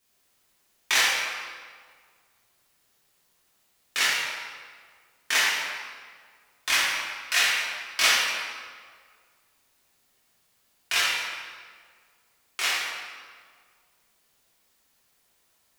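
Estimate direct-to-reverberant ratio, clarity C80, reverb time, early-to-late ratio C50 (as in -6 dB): -8.5 dB, 0.0 dB, 1.8 s, -2.0 dB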